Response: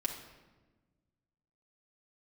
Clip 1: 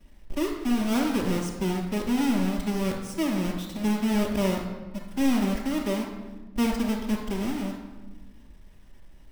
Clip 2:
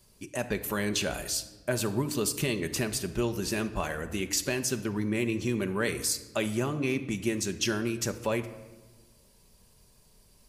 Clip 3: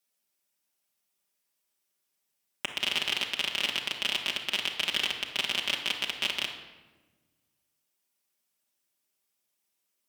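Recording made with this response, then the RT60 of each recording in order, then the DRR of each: 3; 1.2, 1.3, 1.2 s; -10.5, 7.0, -1.5 dB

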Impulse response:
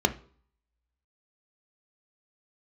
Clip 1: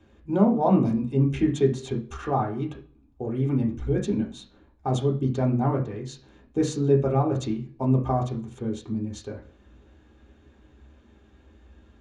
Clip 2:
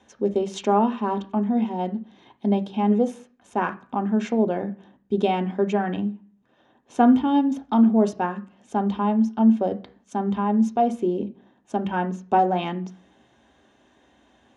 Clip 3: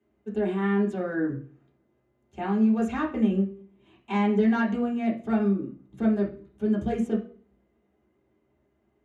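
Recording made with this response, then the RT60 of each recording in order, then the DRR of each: 2; 0.50, 0.50, 0.50 s; -1.5, 7.5, -6.0 dB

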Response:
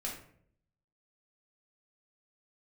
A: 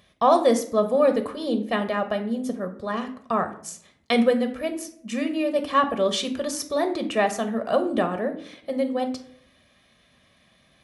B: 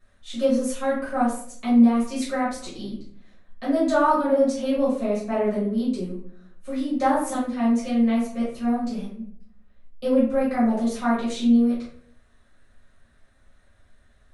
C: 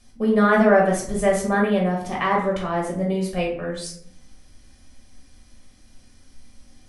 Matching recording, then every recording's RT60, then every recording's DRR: C; 0.65, 0.60, 0.65 s; 7.0, -10.5, -3.0 dB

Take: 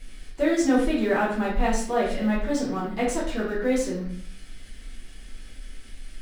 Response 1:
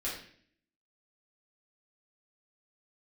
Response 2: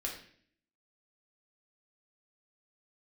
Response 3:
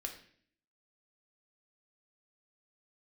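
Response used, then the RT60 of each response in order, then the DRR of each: 1; 0.55, 0.55, 0.55 s; -7.5, -1.5, 2.5 dB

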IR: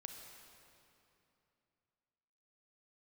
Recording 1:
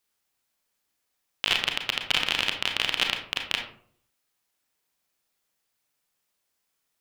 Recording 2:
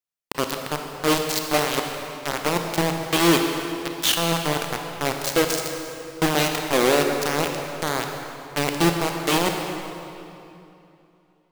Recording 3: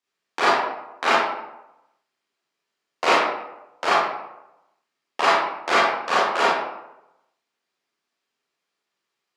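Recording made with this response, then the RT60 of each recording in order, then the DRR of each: 2; 0.55, 2.8, 0.90 s; 3.5, 3.0, -8.5 dB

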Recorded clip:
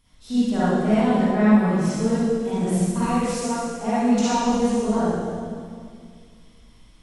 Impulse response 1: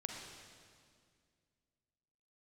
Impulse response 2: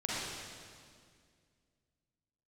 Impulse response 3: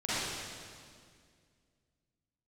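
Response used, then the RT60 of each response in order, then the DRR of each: 3; 2.1, 2.1, 2.1 s; 1.0, -7.5, -13.0 dB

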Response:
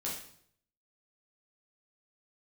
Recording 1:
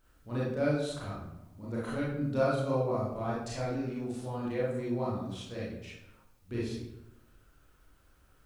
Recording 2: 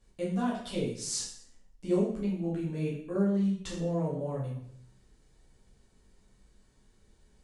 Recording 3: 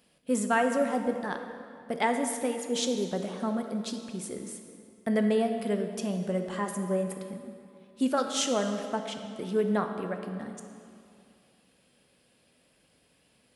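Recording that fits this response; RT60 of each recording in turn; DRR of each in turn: 2; 0.85, 0.65, 2.5 s; -7.5, -5.5, 5.0 dB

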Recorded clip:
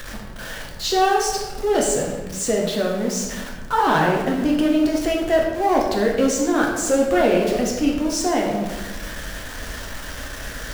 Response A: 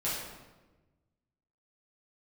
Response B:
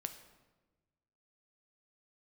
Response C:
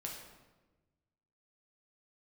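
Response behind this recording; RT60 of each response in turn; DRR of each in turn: C; 1.2, 1.2, 1.2 s; -9.5, 7.5, -1.5 dB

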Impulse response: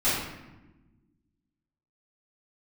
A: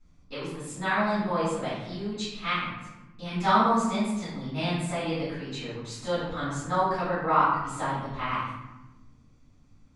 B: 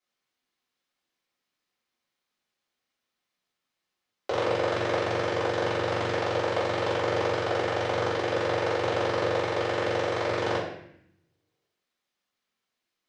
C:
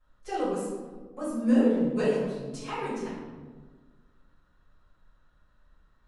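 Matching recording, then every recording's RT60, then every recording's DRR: A; 1.1, 0.75, 1.5 s; -14.0, -8.5, -14.5 dB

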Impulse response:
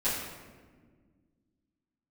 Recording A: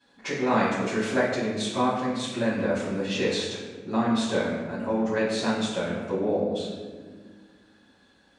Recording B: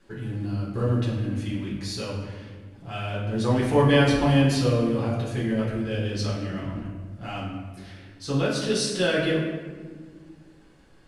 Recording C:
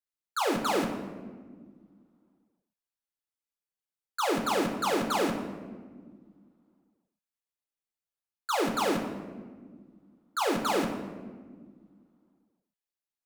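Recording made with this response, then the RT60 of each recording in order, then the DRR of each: A; 1.6, 1.6, 1.6 s; -14.5, -7.0, 2.5 dB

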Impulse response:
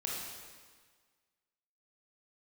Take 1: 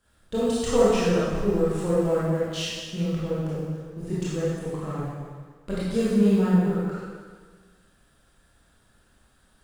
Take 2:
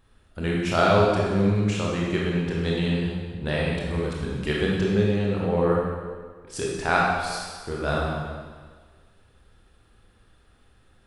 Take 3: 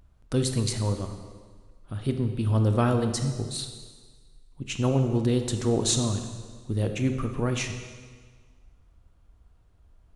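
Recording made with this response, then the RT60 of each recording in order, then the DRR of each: 2; 1.6, 1.6, 1.6 s; -9.5, -4.0, 6.0 dB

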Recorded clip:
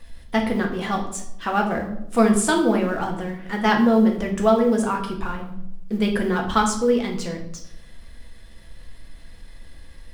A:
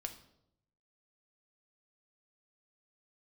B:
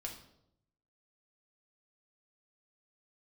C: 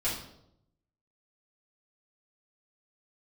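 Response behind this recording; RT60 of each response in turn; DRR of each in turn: B; 0.80, 0.80, 0.80 s; 5.0, 0.0, -9.5 dB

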